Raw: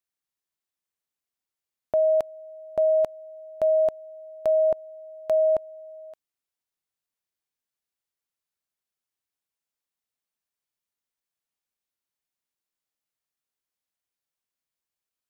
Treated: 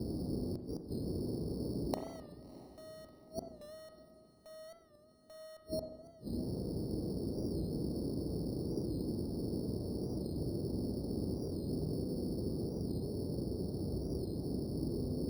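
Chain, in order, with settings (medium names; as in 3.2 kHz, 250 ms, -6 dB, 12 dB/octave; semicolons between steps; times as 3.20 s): CVSD coder 64 kbps; elliptic low-pass 980 Hz, stop band 40 dB; dynamic bell 580 Hz, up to +3 dB, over -32 dBFS, Q 2.6; in parallel at +1 dB: compression 6:1, threshold -31 dBFS, peak gain reduction 12.5 dB; on the sum: band noise 47–410 Hz -40 dBFS; one-sided clip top -19 dBFS, bottom -14 dBFS; inverted gate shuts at -28 dBFS, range -34 dB; sample-and-hold 9×; on a send: echo that smears into a reverb 662 ms, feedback 49%, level -16 dB; on the sum: spring tank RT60 1.1 s, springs 32/44 ms, chirp 55 ms, DRR 5.5 dB; warped record 45 rpm, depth 100 cents; trim +1 dB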